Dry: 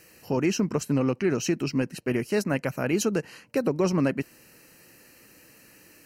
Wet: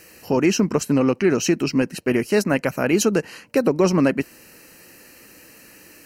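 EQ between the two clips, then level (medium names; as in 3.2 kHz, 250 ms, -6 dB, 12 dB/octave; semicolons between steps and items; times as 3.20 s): peaking EQ 130 Hz -5.5 dB 0.64 oct; +7.0 dB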